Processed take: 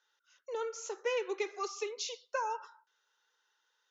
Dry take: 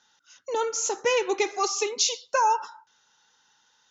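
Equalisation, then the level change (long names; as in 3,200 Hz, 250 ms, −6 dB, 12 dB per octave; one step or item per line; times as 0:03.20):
Butterworth high-pass 380 Hz 36 dB per octave
low-pass filter 1,900 Hz 6 dB per octave
parametric band 780 Hz −10 dB 0.65 octaves
−6.5 dB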